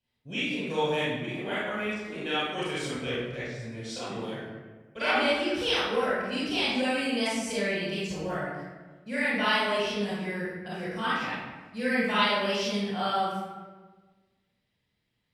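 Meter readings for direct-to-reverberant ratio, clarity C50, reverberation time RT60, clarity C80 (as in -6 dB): -10.5 dB, -4.0 dB, 1.4 s, 0.5 dB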